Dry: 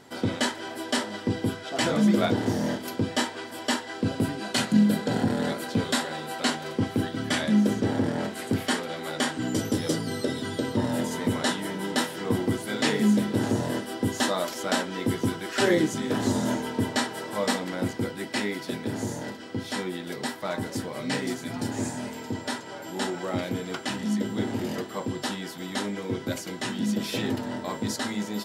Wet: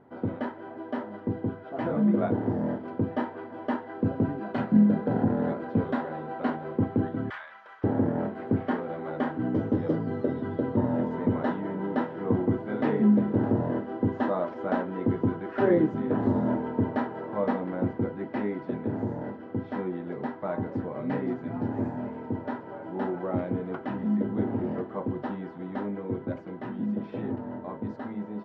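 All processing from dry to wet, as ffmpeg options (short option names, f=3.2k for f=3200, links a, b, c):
-filter_complex "[0:a]asettb=1/sr,asplit=3[a][b][c];[a]atrim=end=7.304[d];[b]atrim=start=7.3:end=7.84,asetpts=PTS-STARTPTS,afade=t=in:d=0.004:c=qsin,afade=t=out:st=0.536:d=0.004:c=qsin,highpass=f=1.1k:w=0.5412,highpass=f=1.1k:w=1.3066,acrusher=bits=5:mode=log:mix=0:aa=0.000001[e];[c]atrim=start=7.836[f];[d][e]acrossfade=d=0.004:c1=hsin:c2=qsin[g];[g][f]acrossfade=d=0.004:c1=qsin:c2=hsin,lowpass=1.2k,aemphasis=mode=reproduction:type=75fm,dynaudnorm=f=250:g=21:m=4dB,volume=-4dB"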